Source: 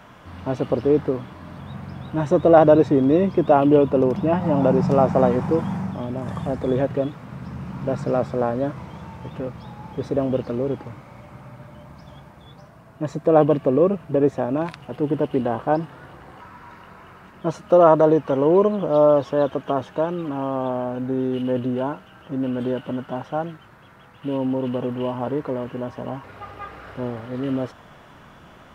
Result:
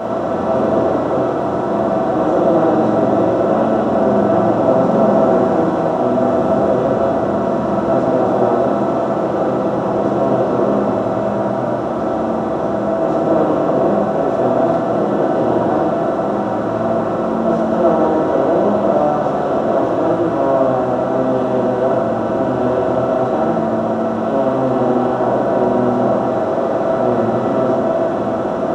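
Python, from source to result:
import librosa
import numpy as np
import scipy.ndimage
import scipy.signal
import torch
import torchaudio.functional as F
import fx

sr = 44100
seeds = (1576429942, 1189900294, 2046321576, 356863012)

y = fx.bin_compress(x, sr, power=0.2)
y = fx.rev_fdn(y, sr, rt60_s=1.2, lf_ratio=1.55, hf_ratio=0.65, size_ms=27.0, drr_db=-7.5)
y = y * 10.0 ** (-16.0 / 20.0)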